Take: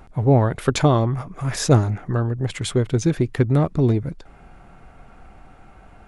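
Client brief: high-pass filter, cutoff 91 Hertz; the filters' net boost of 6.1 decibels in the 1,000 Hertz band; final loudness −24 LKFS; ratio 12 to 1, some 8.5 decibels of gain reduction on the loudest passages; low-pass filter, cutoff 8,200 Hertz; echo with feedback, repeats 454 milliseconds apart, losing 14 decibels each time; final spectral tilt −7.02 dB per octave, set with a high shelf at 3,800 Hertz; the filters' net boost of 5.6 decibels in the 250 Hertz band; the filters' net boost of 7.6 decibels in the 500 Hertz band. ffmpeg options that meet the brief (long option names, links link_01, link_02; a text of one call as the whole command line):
ffmpeg -i in.wav -af "highpass=91,lowpass=8200,equalizer=frequency=250:width_type=o:gain=5,equalizer=frequency=500:width_type=o:gain=7,equalizer=frequency=1000:width_type=o:gain=5.5,highshelf=frequency=3800:gain=-6,acompressor=threshold=-13dB:ratio=12,aecho=1:1:454|908:0.2|0.0399,volume=-2.5dB" out.wav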